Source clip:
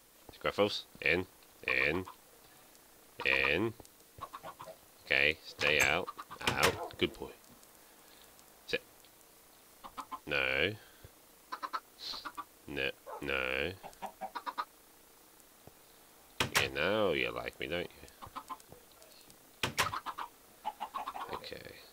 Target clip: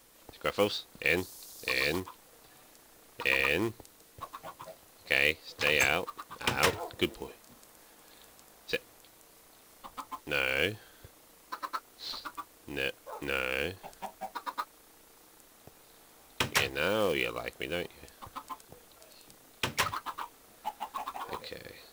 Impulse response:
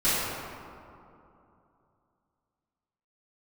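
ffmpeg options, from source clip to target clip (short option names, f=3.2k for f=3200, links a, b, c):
-filter_complex "[0:a]asettb=1/sr,asplit=3[a][b][c];[a]atrim=end=1.174[d];[b]atrim=start=1.17:end=2,asetpts=PTS-STARTPTS,afade=t=in:d=0.004:c=qsin,afade=t=out:st=0.826:d=0.004:c=qsin,highshelf=f=3.5k:t=q:w=1.5:g=11[e];[c]atrim=start=1.996[f];[d][e]acrossfade=d=0.004:c1=hsin:c2=qsin[g];[g][f]acrossfade=d=0.004:c1=qsin:c2=hsin,acrusher=bits=4:mode=log:mix=0:aa=0.000001,volume=2dB"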